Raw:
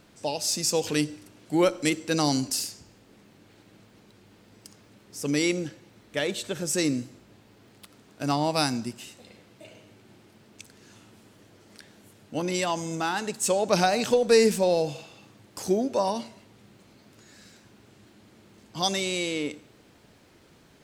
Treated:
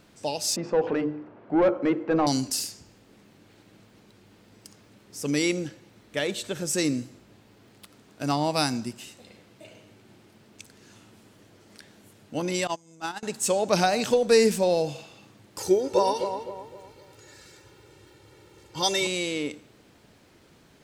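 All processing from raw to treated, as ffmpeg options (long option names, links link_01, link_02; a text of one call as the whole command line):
ffmpeg -i in.wav -filter_complex "[0:a]asettb=1/sr,asplit=3[link_01][link_02][link_03];[link_01]atrim=end=0.564[link_04];[link_02]atrim=start=0.56:end=2.27,asetpts=PTS-STARTPTS,afade=type=in:duration=0.004:curve=qsin,afade=type=out:start_time=1.706:duration=0.004:curve=qsin,lowpass=1300,bandreject=frequency=50:width_type=h:width=6,bandreject=frequency=100:width_type=h:width=6,bandreject=frequency=150:width_type=h:width=6,bandreject=frequency=200:width_type=h:width=6,bandreject=frequency=250:width_type=h:width=6,bandreject=frequency=300:width_type=h:width=6,bandreject=frequency=350:width_type=h:width=6,bandreject=frequency=400:width_type=h:width=6,bandreject=frequency=450:width_type=h:width=6,bandreject=frequency=500:width_type=h:width=6,asplit=2[link_05][link_06];[link_06]highpass=frequency=720:poles=1,volume=19dB,asoftclip=type=tanh:threshold=-11.5dB[link_07];[link_05][link_07]amix=inputs=2:normalize=0,lowpass=frequency=1000:poles=1,volume=-6dB[link_08];[link_03]atrim=start=2.266[link_09];[link_04][link_08]acrossfade=duration=0.004:curve1=hsin:curve2=qsin[link_10];[link_10][link_09]acrossfade=duration=0.004:curve1=qsin:curve2=hsin,asettb=1/sr,asplit=3[link_11][link_12][link_13];[link_11]atrim=end=12.674[link_14];[link_12]atrim=start=12.67:end=13.23,asetpts=PTS-STARTPTS,afade=type=in:duration=0.004:curve=qsin,afade=type=out:start_time=0.556:duration=0.004:curve=qsin,agate=range=-25dB:threshold=-27dB:ratio=16:release=100:detection=peak,equalizer=frequency=7800:width_type=o:width=1.1:gain=4,acompressor=mode=upward:threshold=-45dB:ratio=2.5:attack=3.2:release=140:knee=2.83:detection=peak[link_15];[link_13]atrim=start=13.226[link_16];[link_14][link_15]acrossfade=duration=0.004:curve1=hsin:curve2=qsin[link_17];[link_17][link_16]acrossfade=duration=0.004:curve1=qsin:curve2=hsin,asettb=1/sr,asplit=3[link_18][link_19][link_20];[link_18]atrim=end=15.584[link_21];[link_19]atrim=start=15.58:end=19.07,asetpts=PTS-STARTPTS,afade=type=in:duration=0.004:curve=qsin,afade=type=out:start_time=3.486:duration=0.004:curve=qsin,aecho=1:1:2.2:0.86,atrim=end_sample=153909,asplit=2[link_22][link_23];[link_23]adelay=257,lowpass=frequency=1400:poles=1,volume=-6.5dB,asplit=2[link_24][link_25];[link_25]adelay=257,lowpass=frequency=1400:poles=1,volume=0.41,asplit=2[link_26][link_27];[link_27]adelay=257,lowpass=frequency=1400:poles=1,volume=0.41,asplit=2[link_28][link_29];[link_29]adelay=257,lowpass=frequency=1400:poles=1,volume=0.41,asplit=2[link_30][link_31];[link_31]adelay=257,lowpass=frequency=1400:poles=1,volume=0.41[link_32];[link_22][link_24][link_26][link_28][link_30][link_32]amix=inputs=6:normalize=0,atrim=end_sample=153909[link_33];[link_20]atrim=start=19.066[link_34];[link_21][link_33]acrossfade=duration=0.004:curve1=hsin:curve2=qsin[link_35];[link_35][link_34]acrossfade=duration=0.004:curve1=qsin:curve2=hsin" out.wav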